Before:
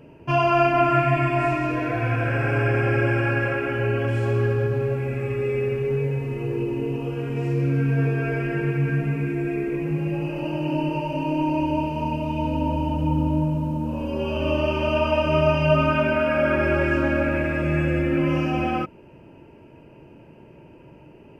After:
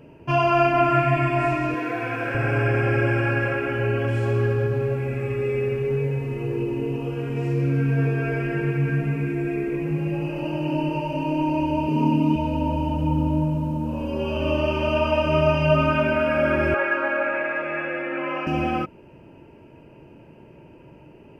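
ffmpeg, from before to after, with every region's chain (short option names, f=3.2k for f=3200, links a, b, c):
-filter_complex "[0:a]asettb=1/sr,asplit=3[a][b][c];[a]atrim=end=1.744[d];[b]atrim=start=1.74:end=2.35,asetpts=PTS-STARTPTS,afade=t=in:d=0.004:c=qsin,afade=t=out:st=0.606:d=0.004:c=qsin,bandreject=f=620:w=8.8,aeval=exprs='sgn(val(0))*max(abs(val(0))-0.002,0)':c=same,highpass=230[e];[c]atrim=start=2.346[f];[d][e]acrossfade=d=0.004:c1=hsin:c2=qsin[g];[g][f]acrossfade=d=0.004:c1=qsin:c2=hsin,asettb=1/sr,asplit=3[h][i][j];[h]atrim=end=11.884[k];[i]atrim=start=11.88:end=12.36,asetpts=PTS-STARTPTS,afade=t=in:d=0.004:c=qsin,afade=t=out:st=0.476:d=0.004:c=qsin,highpass=190,lowshelf=f=520:t=q:w=1.5:g=7.5,aecho=1:1:7.4:0.69,atrim=end_sample=21168[l];[j]atrim=start=12.356[m];[k][l]acrossfade=d=0.004:c1=hsin:c2=qsin[n];[n][m]acrossfade=d=0.004:c1=qsin:c2=hsin,asettb=1/sr,asplit=3[o][p][q];[o]atrim=end=16.744[r];[p]atrim=start=16.74:end=18.47,asetpts=PTS-STARTPTS,afade=t=in:d=0.004:c=qsin,afade=t=out:st=1.726:d=0.004:c=qsin,highpass=710,lowpass=2k,acontrast=29[s];[q]atrim=start=18.466[t];[r][s]acrossfade=d=0.004:c1=hsin:c2=qsin[u];[u][t]acrossfade=d=0.004:c1=qsin:c2=hsin"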